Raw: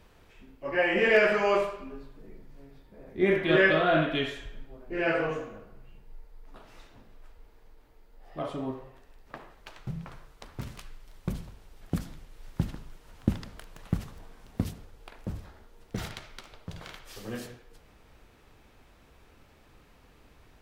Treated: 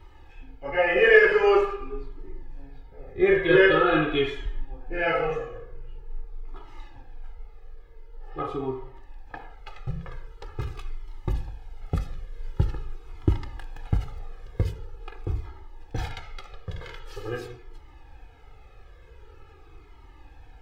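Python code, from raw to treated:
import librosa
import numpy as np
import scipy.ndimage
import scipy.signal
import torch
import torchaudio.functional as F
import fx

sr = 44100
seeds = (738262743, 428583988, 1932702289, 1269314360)

y = fx.peak_eq(x, sr, hz=12000.0, db=-14.5, octaves=2.0)
y = y + 0.86 * np.pad(y, (int(2.4 * sr / 1000.0), 0))[:len(y)]
y = fx.comb_cascade(y, sr, direction='falling', hz=0.45)
y = y * librosa.db_to_amplitude(7.5)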